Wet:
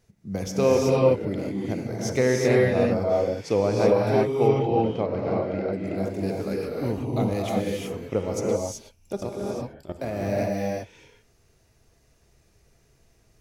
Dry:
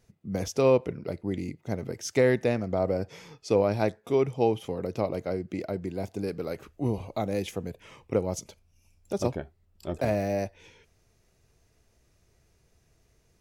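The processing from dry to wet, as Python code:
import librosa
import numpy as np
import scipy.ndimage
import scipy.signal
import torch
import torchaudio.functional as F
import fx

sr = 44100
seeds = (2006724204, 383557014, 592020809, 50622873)

y = fx.lowpass(x, sr, hz=3100.0, slope=12, at=(4.25, 5.73))
y = fx.level_steps(y, sr, step_db=15, at=(9.15, 10.24))
y = fx.rev_gated(y, sr, seeds[0], gate_ms=400, shape='rising', drr_db=-3.0)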